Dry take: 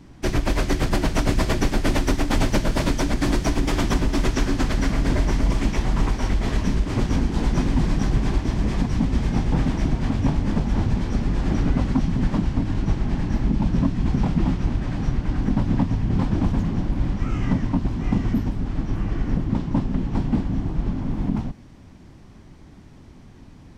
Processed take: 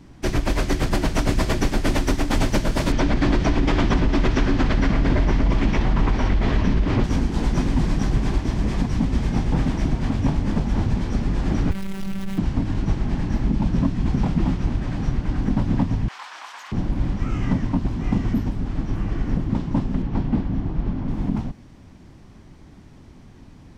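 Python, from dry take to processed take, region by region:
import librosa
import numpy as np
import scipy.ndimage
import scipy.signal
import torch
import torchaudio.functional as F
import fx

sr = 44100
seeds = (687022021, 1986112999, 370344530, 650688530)

y = fx.chain(x, sr, fx.lowpass(hz=3800.0, slope=12),
    fx.env_flatten(amount_pct=50), at=(2.92, 7.04))
y = fx.chain(y, sr, fx.clip_1bit(),
    fx.curve_eq(hz=(120.0, 550.0, 1900.0, 2700.0, 5400.0), db=(0, -16, -10, -10, -14)),
    fx.robotise(hz=193.0), at=(11.71, 12.38))
y = fx.chain(y, sr, fx.highpass(hz=1000.0, slope=24),
    fx.env_flatten(amount_pct=50), at=(16.08, 16.72))
y = fx.chain(y, sr, fx.lowpass(hz=7300.0, slope=12),
    fx.high_shelf(hz=5400.0, db=-9.0), at=(20.02, 21.08))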